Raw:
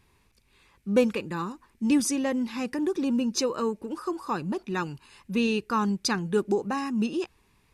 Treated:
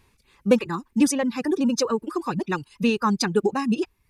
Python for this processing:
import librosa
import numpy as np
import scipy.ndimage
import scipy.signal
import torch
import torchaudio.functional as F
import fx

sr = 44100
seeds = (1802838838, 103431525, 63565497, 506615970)

y = fx.stretch_vocoder(x, sr, factor=0.53)
y = fx.dereverb_blind(y, sr, rt60_s=0.65)
y = y * 10.0 ** (5.5 / 20.0)